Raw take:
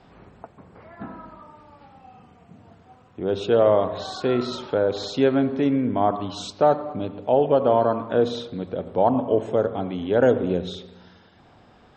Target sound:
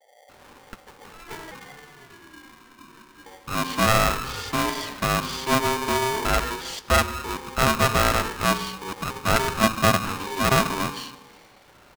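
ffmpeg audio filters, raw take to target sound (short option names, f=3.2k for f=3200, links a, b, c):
-filter_complex "[0:a]asettb=1/sr,asplit=3[a][b][c];[a]atrim=end=5.524[d];[b]atrim=start=5.52:end=6.27,asetpts=PTS-STARTPTS,afade=t=in:d=0.004:c=qsin,afade=t=out:st=0.746:d=0.004:c=qsin,aeval=exprs='val(0)+0.5*0.0178*sgn(val(0))':c=same[e];[c]atrim=start=6.266[f];[d][e]acrossfade=d=0.004:c1=hsin:c2=qsin[g];[g][f]acrossfade=d=0.004:c1=qsin:c2=hsin,acrossover=split=190|570|3900[h][i][j][k];[h]acompressor=threshold=-49dB:ratio=6[l];[l][i][j][k]amix=inputs=4:normalize=0,asettb=1/sr,asplit=3[m][n][o];[m]atrim=end=1.224[p];[n]atrim=start=1.22:end=3.26,asetpts=PTS-STARTPTS,afade=t=in:d=0.004:c=qsin,afade=t=out:st=2.036:d=0.004:c=qsin,afreqshift=200[q];[o]atrim=start=3.256[r];[p][q]acrossfade=d=0.004:c1=hsin:c2=qsin[s];[s][r]acrossfade=d=0.004:c1=qsin:c2=hsin,asettb=1/sr,asplit=3[t][u][v];[t]atrim=end=9.344[w];[u]atrim=start=9.34:end=9.98,asetpts=PTS-STARTPTS,afade=t=in:d=0.004:c=qsin,afade=t=out:st=0.636:d=0.004:c=qsin,aecho=1:1:2:0.91,atrim=end_sample=28224[x];[v]atrim=start=9.976[y];[w][x]acrossfade=d=0.004:c1=hsin:c2=qsin[z];[z][y]acrossfade=d=0.004:c1=qsin:c2=hsin,acrossover=split=160[aa][ab];[ab]adelay=290[ac];[aa][ac]amix=inputs=2:normalize=0,aeval=exprs='clip(val(0),-1,0.0376)':c=same,aeval=exprs='val(0)*sgn(sin(2*PI*660*n/s))':c=same,volume=1dB"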